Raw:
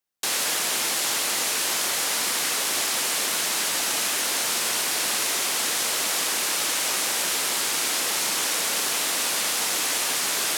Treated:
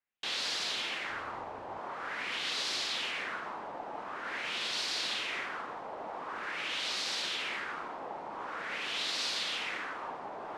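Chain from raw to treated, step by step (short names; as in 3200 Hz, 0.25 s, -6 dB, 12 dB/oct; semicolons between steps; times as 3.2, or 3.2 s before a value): 1.1–1.79 octaver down 2 oct, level -4 dB; limiter -17.5 dBFS, peak gain reduction 6 dB; soft clip -22.5 dBFS, distortion -17 dB; LFO low-pass sine 0.46 Hz 810–4400 Hz; gain -6.5 dB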